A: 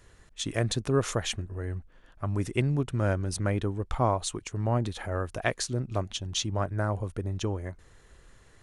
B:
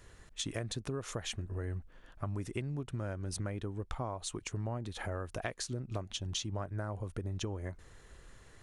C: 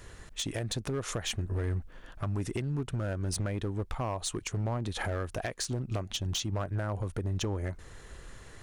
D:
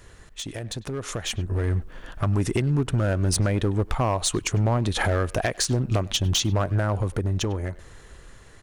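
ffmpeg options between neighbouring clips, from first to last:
-af "acompressor=threshold=-34dB:ratio=10"
-filter_complex "[0:a]asplit=2[a][b];[b]alimiter=level_in=6dB:limit=-24dB:level=0:latency=1:release=333,volume=-6dB,volume=3dB[c];[a][c]amix=inputs=2:normalize=0,volume=26.5dB,asoftclip=hard,volume=-26.5dB"
-filter_complex "[0:a]dynaudnorm=f=280:g=11:m=10dB,asplit=2[a][b];[b]adelay=100,highpass=300,lowpass=3.4k,asoftclip=type=hard:threshold=-26dB,volume=-18dB[c];[a][c]amix=inputs=2:normalize=0"

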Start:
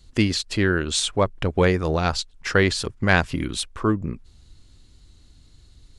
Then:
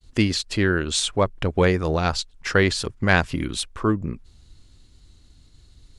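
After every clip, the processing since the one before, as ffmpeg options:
-af "agate=range=-33dB:threshold=-49dB:ratio=3:detection=peak"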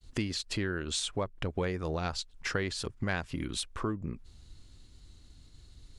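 -af "acompressor=threshold=-30dB:ratio=3,volume=-2.5dB"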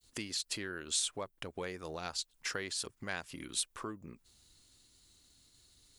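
-af "aemphasis=mode=production:type=bsi,volume=-6dB"

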